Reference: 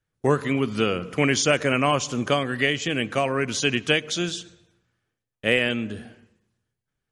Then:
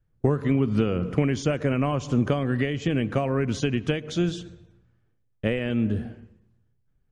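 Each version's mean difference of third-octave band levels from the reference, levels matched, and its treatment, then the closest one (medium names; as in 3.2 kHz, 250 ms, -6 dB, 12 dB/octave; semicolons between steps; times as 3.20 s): 6.0 dB: compression, threshold -24 dBFS, peak gain reduction 9.5 dB; tilt EQ -3.5 dB/octave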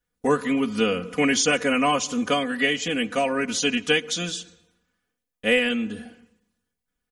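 3.0 dB: treble shelf 9.8 kHz +7.5 dB; comb 4.1 ms, depth 97%; trim -3 dB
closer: second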